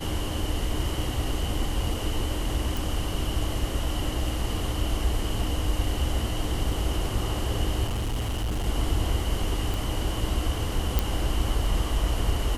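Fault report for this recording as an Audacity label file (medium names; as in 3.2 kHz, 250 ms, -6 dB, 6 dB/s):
2.770000	2.770000	pop
7.870000	8.670000	clipped -24.5 dBFS
9.740000	9.740000	pop
10.990000	10.990000	pop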